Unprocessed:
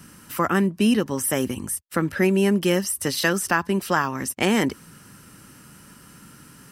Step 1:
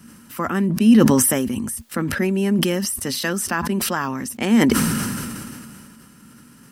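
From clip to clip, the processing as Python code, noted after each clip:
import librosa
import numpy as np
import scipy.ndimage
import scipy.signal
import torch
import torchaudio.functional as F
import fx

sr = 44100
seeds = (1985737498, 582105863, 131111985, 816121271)

y = fx.peak_eq(x, sr, hz=230.0, db=12.0, octaves=0.28)
y = fx.sustainer(y, sr, db_per_s=24.0)
y = F.gain(torch.from_numpy(y), -3.5).numpy()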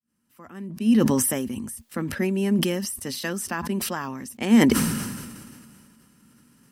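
y = fx.fade_in_head(x, sr, length_s=1.62)
y = fx.peak_eq(y, sr, hz=1400.0, db=-3.5, octaves=0.45)
y = fx.upward_expand(y, sr, threshold_db=-31.0, expansion=1.5)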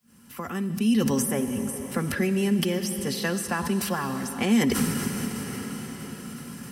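y = fx.notch_comb(x, sr, f0_hz=310.0)
y = fx.rev_freeverb(y, sr, rt60_s=2.9, hf_ratio=0.95, predelay_ms=20, drr_db=10.0)
y = fx.band_squash(y, sr, depth_pct=70)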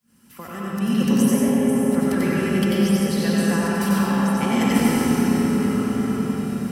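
y = x + 10.0 ** (-4.0 / 20.0) * np.pad(x, (int(92 * sr / 1000.0), 0))[:len(x)]
y = fx.rev_freeverb(y, sr, rt60_s=4.0, hf_ratio=0.4, predelay_ms=60, drr_db=-5.0)
y = F.gain(torch.from_numpy(y), -3.5).numpy()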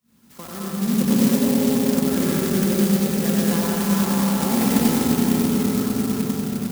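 y = fx.clock_jitter(x, sr, seeds[0], jitter_ms=0.12)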